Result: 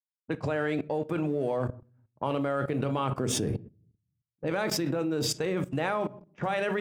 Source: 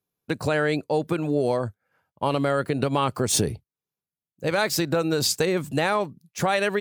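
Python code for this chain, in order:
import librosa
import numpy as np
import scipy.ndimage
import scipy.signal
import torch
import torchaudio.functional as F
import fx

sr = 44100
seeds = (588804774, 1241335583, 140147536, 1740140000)

y = fx.law_mismatch(x, sr, coded='A')
y = scipy.signal.sosfilt(scipy.signal.butter(2, 53.0, 'highpass', fs=sr, output='sos'), y)
y = fx.peak_eq(y, sr, hz=11000.0, db=-11.0, octaves=1.9)
y = fx.notch(y, sr, hz=4200.0, q=5.2)
y = fx.room_shoebox(y, sr, seeds[0], volume_m3=350.0, walls='furnished', distance_m=0.55)
y = fx.env_lowpass(y, sr, base_hz=800.0, full_db=-22.5)
y = fx.hum_notches(y, sr, base_hz=60, count=3)
y = fx.dynamic_eq(y, sr, hz=280.0, q=1.4, threshold_db=-38.0, ratio=4.0, max_db=5, at=(3.13, 5.26), fade=0.02)
y = fx.level_steps(y, sr, step_db=17)
y = y * 10.0 ** (5.5 / 20.0)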